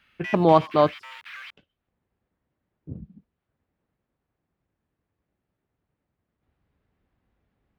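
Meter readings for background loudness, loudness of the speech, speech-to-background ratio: −39.0 LKFS, −20.5 LKFS, 18.5 dB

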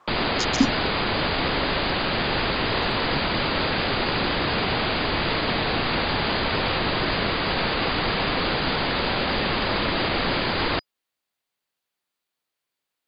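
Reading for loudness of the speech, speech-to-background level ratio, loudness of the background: −27.5 LKFS, −4.0 dB, −23.5 LKFS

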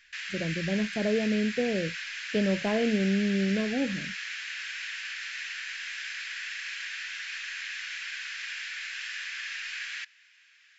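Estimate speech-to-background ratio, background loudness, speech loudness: 6.0 dB, −35.0 LKFS, −29.0 LKFS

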